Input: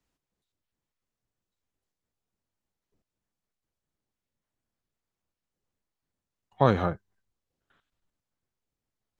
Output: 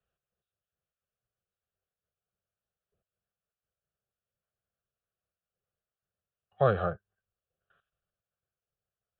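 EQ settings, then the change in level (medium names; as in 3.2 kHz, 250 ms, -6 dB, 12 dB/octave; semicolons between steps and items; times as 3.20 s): high-pass 82 Hz 6 dB/octave; low-pass 2.8 kHz 24 dB/octave; static phaser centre 1.4 kHz, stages 8; 0.0 dB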